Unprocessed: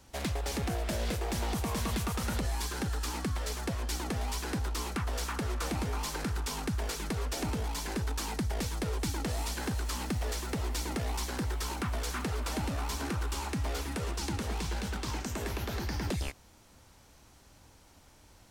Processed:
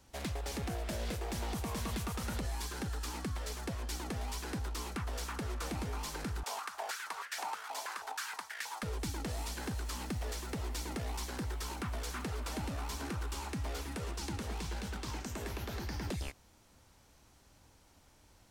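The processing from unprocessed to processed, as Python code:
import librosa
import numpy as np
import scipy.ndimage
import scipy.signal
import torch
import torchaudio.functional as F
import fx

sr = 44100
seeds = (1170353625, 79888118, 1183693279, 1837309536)

y = fx.filter_held_highpass(x, sr, hz=6.3, low_hz=670.0, high_hz=1700.0, at=(6.43, 8.83))
y = F.gain(torch.from_numpy(y), -5.0).numpy()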